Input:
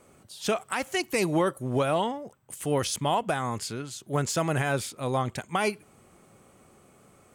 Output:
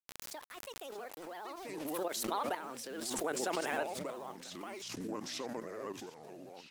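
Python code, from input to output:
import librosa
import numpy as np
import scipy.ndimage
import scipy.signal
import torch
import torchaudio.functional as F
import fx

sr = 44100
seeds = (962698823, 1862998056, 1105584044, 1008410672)

y = fx.speed_glide(x, sr, from_pct=141, to_pct=78)
y = fx.doppler_pass(y, sr, speed_mps=6, closest_m=2.7, pass_at_s=3.1)
y = scipy.signal.sosfilt(scipy.signal.butter(4, 320.0, 'highpass', fs=sr, output='sos'), y)
y = fx.high_shelf(y, sr, hz=2700.0, db=-5.0)
y = fx.level_steps(y, sr, step_db=11)
y = fx.quant_dither(y, sr, seeds[0], bits=10, dither='none')
y = fx.dmg_crackle(y, sr, seeds[1], per_s=20.0, level_db=-54.0)
y = fx.echo_pitch(y, sr, ms=501, semitones=-6, count=3, db_per_echo=-6.0)
y = fx.vibrato(y, sr, rate_hz=15.0, depth_cents=98.0)
y = fx.pre_swell(y, sr, db_per_s=26.0)
y = y * librosa.db_to_amplitude(-1.5)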